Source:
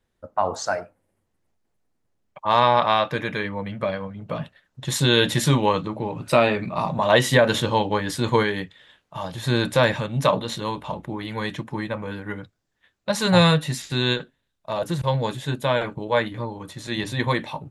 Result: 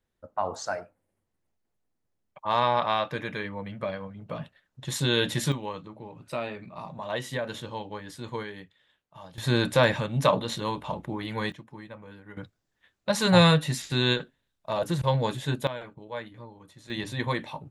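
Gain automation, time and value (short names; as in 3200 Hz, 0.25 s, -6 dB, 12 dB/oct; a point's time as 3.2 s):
-6.5 dB
from 5.52 s -15 dB
from 9.38 s -2.5 dB
from 11.52 s -15 dB
from 12.37 s -2 dB
from 15.67 s -15 dB
from 16.9 s -6 dB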